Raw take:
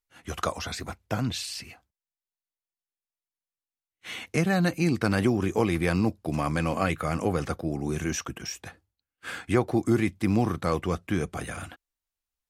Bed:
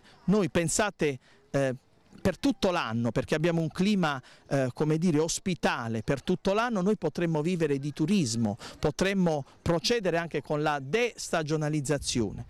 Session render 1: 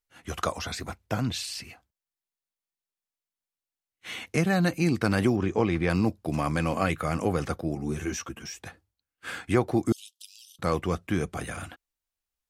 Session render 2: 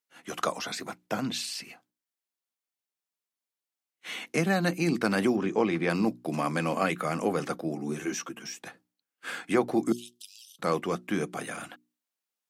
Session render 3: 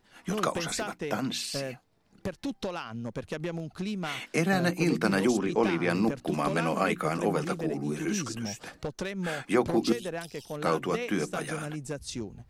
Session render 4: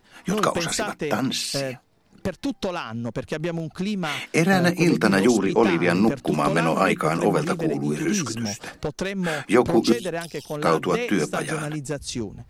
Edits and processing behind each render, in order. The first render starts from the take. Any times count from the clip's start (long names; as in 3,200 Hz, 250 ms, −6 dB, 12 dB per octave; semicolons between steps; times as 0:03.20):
0:05.36–0:05.90: high-frequency loss of the air 110 metres; 0:07.75–0:08.59: string-ensemble chorus; 0:09.92–0:10.59: Butterworth high-pass 2,900 Hz 96 dB per octave
high-pass filter 170 Hz 24 dB per octave; mains-hum notches 60/120/180/240/300/360 Hz
mix in bed −8 dB
level +7 dB